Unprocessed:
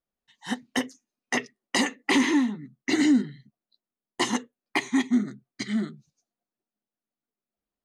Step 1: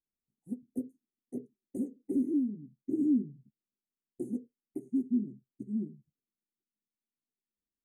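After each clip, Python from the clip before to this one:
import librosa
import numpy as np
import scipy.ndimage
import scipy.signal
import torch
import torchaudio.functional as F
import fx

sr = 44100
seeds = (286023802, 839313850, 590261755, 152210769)

y = scipy.signal.sosfilt(scipy.signal.cheby2(4, 50, [940.0, 5300.0], 'bandstop', fs=sr, output='sos'), x)
y = fx.high_shelf(y, sr, hz=3700.0, db=-7.5)
y = y * 10.0 ** (-6.5 / 20.0)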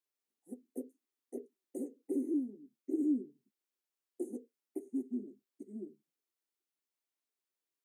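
y = scipy.signal.sosfilt(scipy.signal.butter(4, 340.0, 'highpass', fs=sr, output='sos'), x)
y = y * 10.0 ** (2.5 / 20.0)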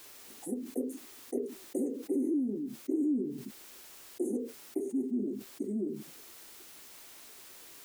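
y = fx.env_flatten(x, sr, amount_pct=70)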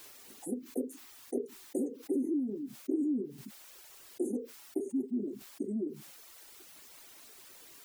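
y = fx.dereverb_blind(x, sr, rt60_s=0.88)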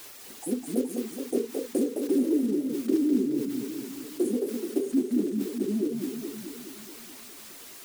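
y = fx.block_float(x, sr, bits=5)
y = fx.echo_warbled(y, sr, ms=212, feedback_pct=63, rate_hz=2.8, cents=210, wet_db=-5)
y = y * 10.0 ** (7.0 / 20.0)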